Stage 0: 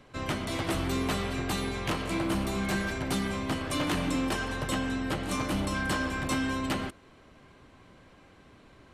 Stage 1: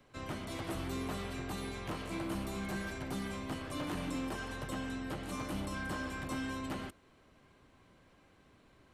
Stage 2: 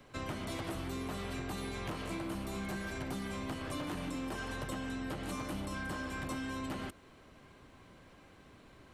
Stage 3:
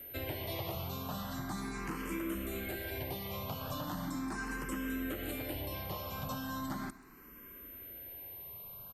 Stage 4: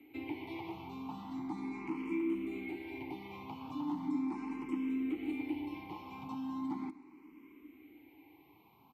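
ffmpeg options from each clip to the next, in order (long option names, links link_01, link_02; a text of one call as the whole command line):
ffmpeg -i in.wav -filter_complex "[0:a]highshelf=frequency=11000:gain=8,acrossover=split=130|1500[link_01][link_02][link_03];[link_03]alimiter=level_in=6.5dB:limit=-24dB:level=0:latency=1:release=58,volume=-6.5dB[link_04];[link_01][link_02][link_04]amix=inputs=3:normalize=0,volume=-8.5dB" out.wav
ffmpeg -i in.wav -af "acompressor=threshold=-42dB:ratio=6,volume=6dB" out.wav
ffmpeg -i in.wav -filter_complex "[0:a]aecho=1:1:130:0.106,aeval=exprs='val(0)+0.00398*sin(2*PI*13000*n/s)':channel_layout=same,asplit=2[link_01][link_02];[link_02]afreqshift=0.38[link_03];[link_01][link_03]amix=inputs=2:normalize=1,volume=3dB" out.wav
ffmpeg -i in.wav -filter_complex "[0:a]asplit=3[link_01][link_02][link_03];[link_01]bandpass=frequency=300:width_type=q:width=8,volume=0dB[link_04];[link_02]bandpass=frequency=870:width_type=q:width=8,volume=-6dB[link_05];[link_03]bandpass=frequency=2240:width_type=q:width=8,volume=-9dB[link_06];[link_04][link_05][link_06]amix=inputs=3:normalize=0,volume=10.5dB" out.wav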